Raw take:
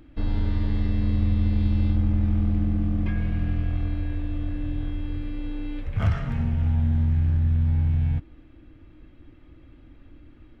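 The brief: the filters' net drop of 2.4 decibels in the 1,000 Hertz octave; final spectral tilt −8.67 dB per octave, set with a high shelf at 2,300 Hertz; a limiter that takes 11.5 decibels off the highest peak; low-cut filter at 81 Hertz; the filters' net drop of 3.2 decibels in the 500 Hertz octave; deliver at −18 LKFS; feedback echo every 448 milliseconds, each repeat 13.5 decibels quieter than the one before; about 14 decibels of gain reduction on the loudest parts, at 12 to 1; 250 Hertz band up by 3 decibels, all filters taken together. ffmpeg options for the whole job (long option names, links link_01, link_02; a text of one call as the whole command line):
ffmpeg -i in.wav -af "highpass=81,equalizer=frequency=250:width_type=o:gain=5.5,equalizer=frequency=500:width_type=o:gain=-7,equalizer=frequency=1000:width_type=o:gain=-3,highshelf=frequency=2300:gain=7.5,acompressor=threshold=-34dB:ratio=12,alimiter=level_in=14dB:limit=-24dB:level=0:latency=1,volume=-14dB,aecho=1:1:448|896:0.211|0.0444,volume=27.5dB" out.wav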